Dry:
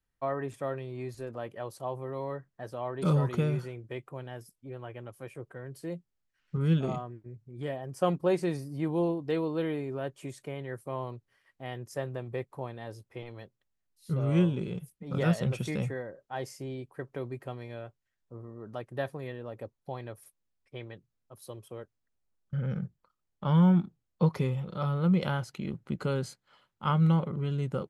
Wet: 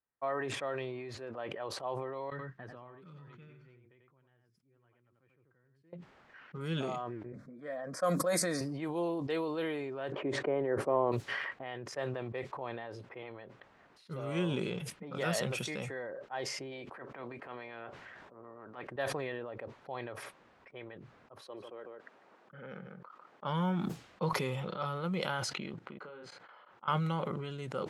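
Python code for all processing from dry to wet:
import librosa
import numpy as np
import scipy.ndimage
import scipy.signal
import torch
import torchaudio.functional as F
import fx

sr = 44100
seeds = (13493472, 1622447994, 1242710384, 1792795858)

y = fx.chain(x, sr, fx.tone_stack(knobs='6-0-2'),
    fx.echo_single(ms=90, db=-8.0), at=(2.3, 5.93))
y = fx.chain(y, sr, fx.high_shelf(hz=4200.0, db=8.5),
    fx.fixed_phaser(hz=570.0, stages=8), at=(7.32, 8.61))
y = fx.chain(y, sr, fx.lowpass(hz=1700.0, slope=12),
    fx.peak_eq(hz=380.0, db=13.5, octaves=3.0), at=(10.12, 11.12))
y = fx.spec_clip(y, sr, under_db=12, at=(16.71, 18.86), fade=0.02)
y = fx.transient(y, sr, attack_db=-10, sustain_db=2, at=(16.71, 18.86), fade=0.02)
y = fx.chain(y, sr, fx.highpass(hz=240.0, slope=12),
    fx.echo_single(ms=149, db=-17.5), at=(21.41, 23.44))
y = fx.chain(y, sr, fx.bass_treble(bass_db=-8, treble_db=1),
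    fx.doubler(ms=34.0, db=-4.5),
    fx.level_steps(step_db=22), at=(25.78, 26.88))
y = fx.env_lowpass(y, sr, base_hz=1300.0, full_db=-25.5)
y = fx.highpass(y, sr, hz=680.0, slope=6)
y = fx.sustainer(y, sr, db_per_s=22.0)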